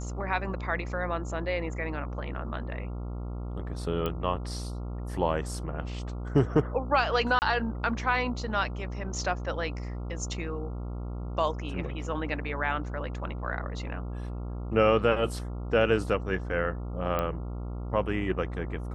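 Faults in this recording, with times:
mains buzz 60 Hz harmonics 23 −35 dBFS
0:04.06: click −18 dBFS
0:07.39–0:07.42: drop-out 29 ms
0:17.19: click −16 dBFS

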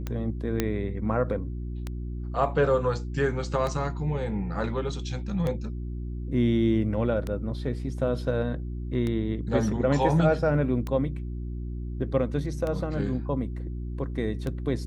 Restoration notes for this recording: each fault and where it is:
mains hum 60 Hz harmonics 6 −33 dBFS
scratch tick 33 1/3 rpm −18 dBFS
0:00.60: click −10 dBFS

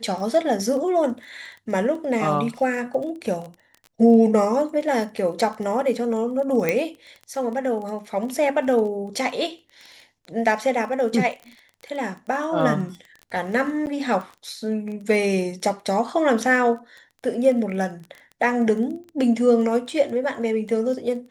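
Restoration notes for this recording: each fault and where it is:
surface crackle 15 per second −31 dBFS
0:06.69: click −8 dBFS
0:13.86–0:13.87: drop-out 9.5 ms

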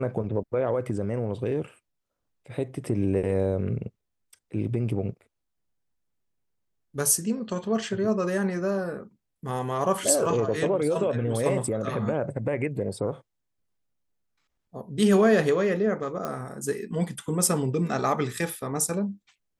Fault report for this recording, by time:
0:16.25: click −17 dBFS

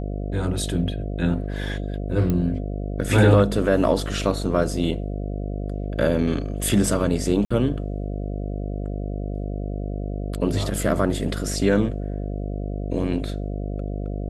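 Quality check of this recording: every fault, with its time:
mains buzz 50 Hz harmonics 14 −28 dBFS
0:02.30: click −12 dBFS
0:07.45–0:07.50: drop-out 55 ms

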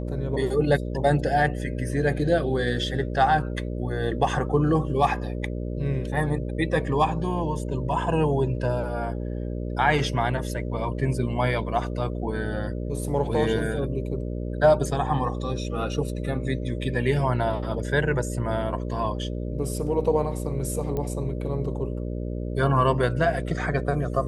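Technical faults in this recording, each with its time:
mains buzz 60 Hz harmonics 10 −30 dBFS
0:20.97: click −18 dBFS

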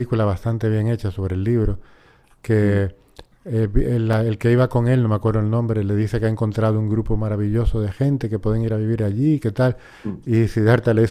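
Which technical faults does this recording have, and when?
0:04.13: drop-out 2.9 ms

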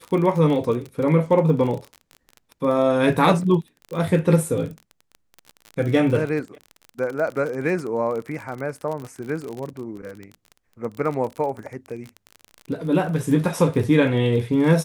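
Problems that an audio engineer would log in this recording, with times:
surface crackle 34 per second −28 dBFS

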